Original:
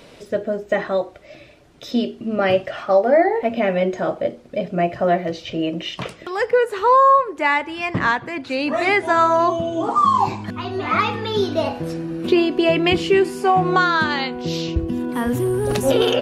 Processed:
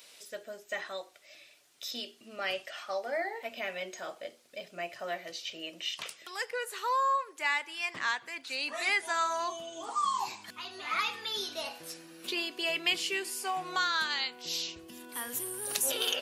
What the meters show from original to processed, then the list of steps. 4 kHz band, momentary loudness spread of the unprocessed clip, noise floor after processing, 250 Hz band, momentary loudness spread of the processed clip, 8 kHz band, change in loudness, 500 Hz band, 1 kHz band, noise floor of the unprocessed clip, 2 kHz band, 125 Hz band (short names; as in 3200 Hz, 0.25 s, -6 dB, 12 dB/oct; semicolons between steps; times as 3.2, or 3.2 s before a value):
-5.0 dB, 10 LU, -59 dBFS, -26.0 dB, 14 LU, n/a, -13.5 dB, -21.0 dB, -15.5 dB, -45 dBFS, -10.0 dB, under -30 dB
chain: differentiator; gain +1.5 dB